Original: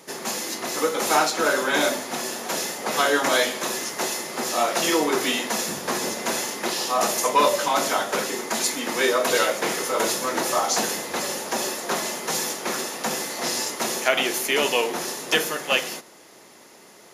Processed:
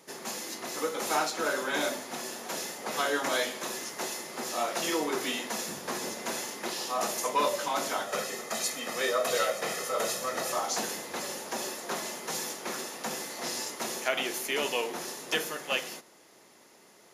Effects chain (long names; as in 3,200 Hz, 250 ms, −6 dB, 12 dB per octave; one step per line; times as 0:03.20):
0:08.07–0:10.52: comb filter 1.6 ms, depth 54%
level −8.5 dB